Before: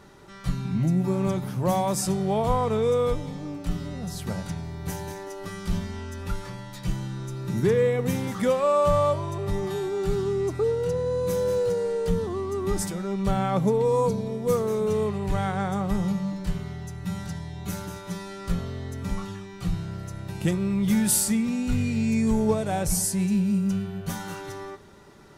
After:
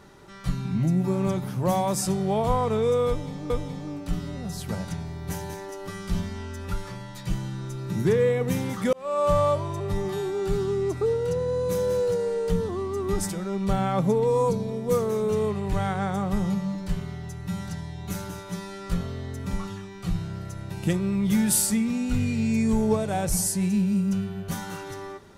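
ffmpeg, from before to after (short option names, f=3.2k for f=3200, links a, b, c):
-filter_complex "[0:a]asplit=3[a][b][c];[a]atrim=end=3.502[d];[b]atrim=start=3.078:end=8.51,asetpts=PTS-STARTPTS,afade=t=out:st=5.428:d=0.004:c=hsin[e];[c]atrim=start=8.51,asetpts=PTS-STARTPTS,afade=t=in:d=0.38[f];[e][f]concat=n=2:v=0:a=1[g];[d][g]acrossfade=d=0.004:c1=hsin:c2=hsin"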